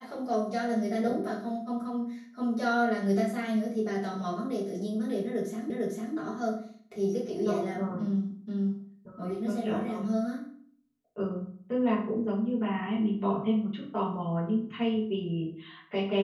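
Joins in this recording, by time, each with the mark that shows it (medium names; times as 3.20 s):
5.70 s: repeat of the last 0.45 s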